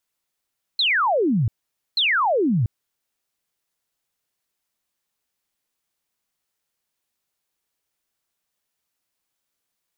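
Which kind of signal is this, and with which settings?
repeated falling chirps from 4,300 Hz, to 100 Hz, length 0.69 s sine, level −16.5 dB, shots 2, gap 0.49 s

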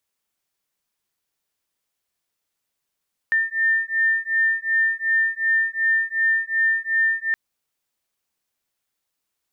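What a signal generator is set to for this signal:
two tones that beat 1,800 Hz, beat 2.7 Hz, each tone −21 dBFS 4.02 s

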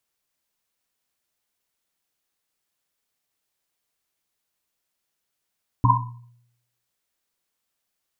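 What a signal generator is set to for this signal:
drum after Risset, pitch 120 Hz, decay 0.79 s, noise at 1,000 Hz, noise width 100 Hz, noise 60%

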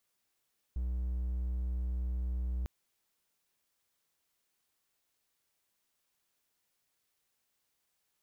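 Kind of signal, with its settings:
tone triangle 61.7 Hz −29.5 dBFS 1.90 s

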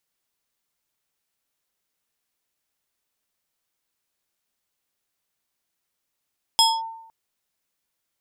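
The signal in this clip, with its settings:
two-operator FM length 0.51 s, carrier 902 Hz, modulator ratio 4.7, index 1.6, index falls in 0.23 s linear, decay 0.82 s, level −11 dB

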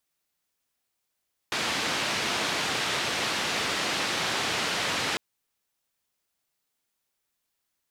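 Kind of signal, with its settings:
band-limited noise 120–3,900 Hz, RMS −28.5 dBFS 3.65 s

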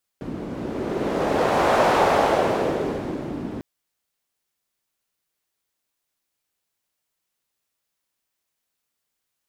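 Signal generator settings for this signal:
wind from filtered noise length 3.40 s, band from 260 Hz, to 710 Hz, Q 1.6, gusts 1, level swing 14 dB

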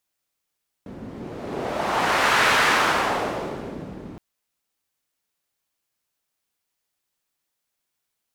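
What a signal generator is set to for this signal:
wind from filtered noise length 3.32 s, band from 220 Hz, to 1,500 Hz, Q 1.1, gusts 1, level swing 20 dB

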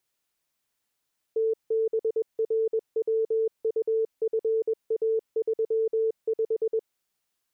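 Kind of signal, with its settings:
Morse code "TBRWUFA35" 21 words per minute 445 Hz −21.5 dBFS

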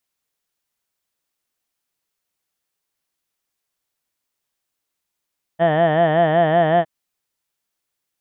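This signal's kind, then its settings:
vowel from formants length 1.26 s, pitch 160 Hz, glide +0.5 semitones, vibrato depth 1.1 semitones, F1 690 Hz, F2 1,800 Hz, F3 3,100 Hz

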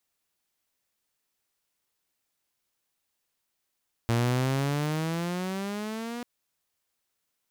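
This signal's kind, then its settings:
pitch glide with a swell saw, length 2.14 s, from 115 Hz, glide +13 semitones, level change −11.5 dB, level −19.5 dB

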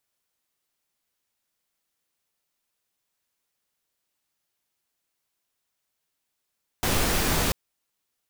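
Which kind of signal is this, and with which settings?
noise pink, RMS −23.5 dBFS 0.69 s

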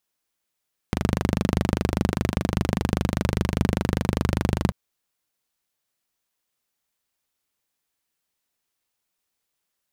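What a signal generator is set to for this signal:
pulse-train model of a single-cylinder engine, steady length 3.79 s, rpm 3,000, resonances 80/120/180 Hz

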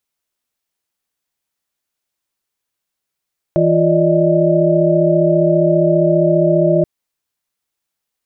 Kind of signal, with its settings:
held notes E3/F4/D5/D#5 sine, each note −15.5 dBFS 3.28 s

